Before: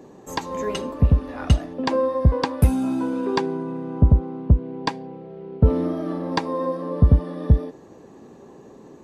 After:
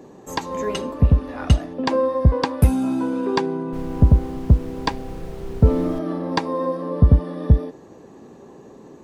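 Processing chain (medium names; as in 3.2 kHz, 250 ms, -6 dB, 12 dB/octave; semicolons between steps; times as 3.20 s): 3.72–5.98 s: added noise brown -33 dBFS; trim +1.5 dB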